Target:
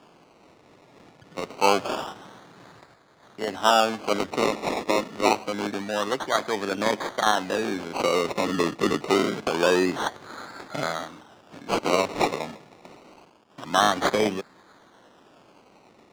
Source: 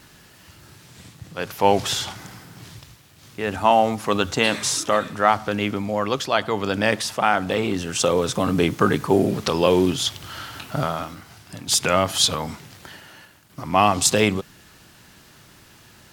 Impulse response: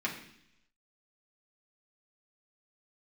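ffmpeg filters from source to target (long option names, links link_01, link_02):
-filter_complex "[0:a]acrusher=samples=22:mix=1:aa=0.000001:lfo=1:lforange=13.2:lforate=0.26,acrossover=split=200 7300:gain=0.126 1 0.178[link_01][link_02][link_03];[link_01][link_02][link_03]amix=inputs=3:normalize=0,volume=-2.5dB"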